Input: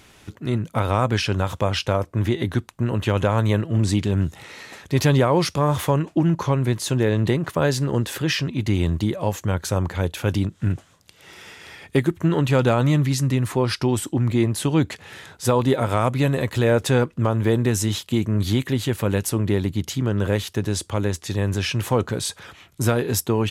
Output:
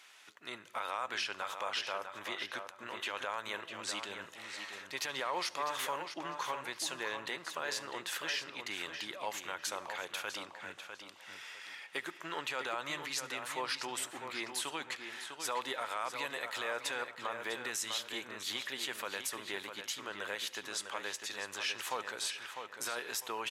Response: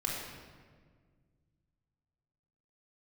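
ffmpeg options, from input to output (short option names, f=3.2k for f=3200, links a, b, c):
-filter_complex "[0:a]highpass=1.1k,highshelf=f=8.6k:g=-7.5,alimiter=limit=-21dB:level=0:latency=1:release=75,asplit=2[a][b];[b]adelay=651,lowpass=f=4.5k:p=1,volume=-7dB,asplit=2[c][d];[d]adelay=651,lowpass=f=4.5k:p=1,volume=0.3,asplit=2[e][f];[f]adelay=651,lowpass=f=4.5k:p=1,volume=0.3,asplit=2[g][h];[h]adelay=651,lowpass=f=4.5k:p=1,volume=0.3[i];[a][c][e][g][i]amix=inputs=5:normalize=0,asplit=2[j][k];[1:a]atrim=start_sample=2205,afade=t=out:st=0.21:d=0.01,atrim=end_sample=9702,adelay=71[l];[k][l]afir=irnorm=-1:irlink=0,volume=-24dB[m];[j][m]amix=inputs=2:normalize=0,volume=-4.5dB"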